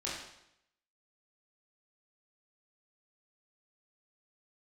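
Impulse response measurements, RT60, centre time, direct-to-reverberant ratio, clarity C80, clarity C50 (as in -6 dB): 0.80 s, 57 ms, -7.0 dB, 4.5 dB, 1.5 dB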